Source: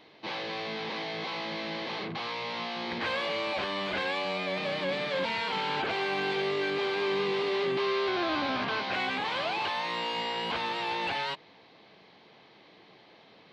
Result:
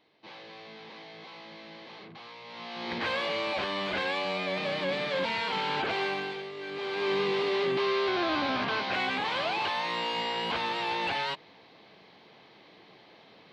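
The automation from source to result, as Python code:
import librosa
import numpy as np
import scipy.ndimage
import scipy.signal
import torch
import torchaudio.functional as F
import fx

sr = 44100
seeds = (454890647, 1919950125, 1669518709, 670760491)

y = fx.gain(x, sr, db=fx.line((2.43, -11.5), (2.92, 0.5), (6.06, 0.5), (6.52, -11.5), (7.1, 1.0)))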